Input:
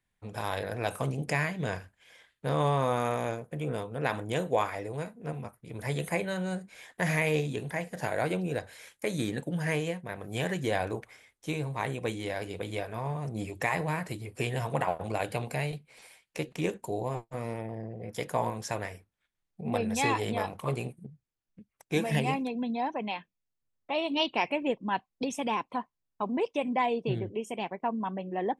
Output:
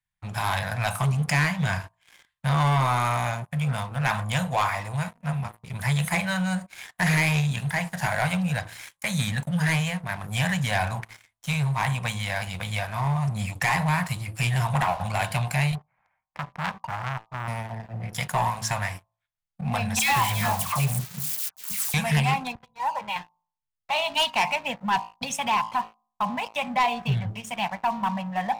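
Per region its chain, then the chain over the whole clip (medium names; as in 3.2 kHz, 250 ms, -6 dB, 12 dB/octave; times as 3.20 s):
15.75–17.48 s: low-pass 1.5 kHz 24 dB/octave + transformer saturation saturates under 2.2 kHz
19.99–21.94 s: zero-crossing glitches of -29.5 dBFS + phase dispersion lows, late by 126 ms, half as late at 1.2 kHz
22.55–23.16 s: tape spacing loss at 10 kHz 44 dB + comb 2.1 ms, depth 91% + three bands expanded up and down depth 100%
whole clip: Chebyshev band-stop 160–850 Hz, order 2; de-hum 55.46 Hz, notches 22; waveshaping leveller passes 3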